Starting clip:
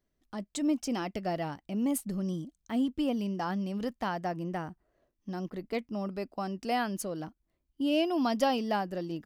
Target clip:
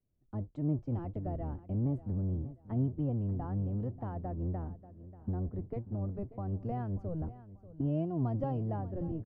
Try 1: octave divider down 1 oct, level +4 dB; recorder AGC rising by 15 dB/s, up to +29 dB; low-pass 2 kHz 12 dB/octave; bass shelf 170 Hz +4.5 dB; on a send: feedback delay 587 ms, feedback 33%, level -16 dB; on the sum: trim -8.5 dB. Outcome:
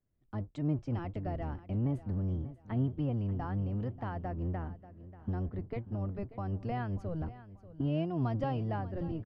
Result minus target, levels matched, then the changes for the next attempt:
2 kHz band +11.5 dB
change: low-pass 780 Hz 12 dB/octave

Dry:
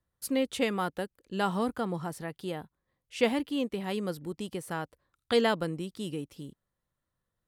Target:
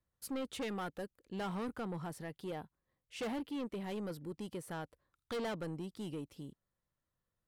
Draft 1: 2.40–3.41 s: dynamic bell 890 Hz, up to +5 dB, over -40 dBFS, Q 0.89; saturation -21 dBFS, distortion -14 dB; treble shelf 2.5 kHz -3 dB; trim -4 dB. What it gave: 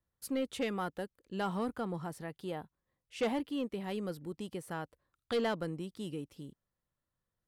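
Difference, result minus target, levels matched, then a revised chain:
saturation: distortion -8 dB
2.40–3.41 s: dynamic bell 890 Hz, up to +5 dB, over -40 dBFS, Q 0.89; saturation -31 dBFS, distortion -6 dB; treble shelf 2.5 kHz -3 dB; trim -4 dB

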